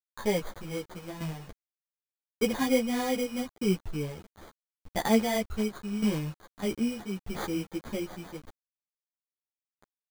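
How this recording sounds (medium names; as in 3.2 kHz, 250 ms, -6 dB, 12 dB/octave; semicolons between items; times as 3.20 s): aliases and images of a low sample rate 2.7 kHz, jitter 0%; tremolo saw down 0.83 Hz, depth 70%; a quantiser's noise floor 8-bit, dither none; a shimmering, thickened sound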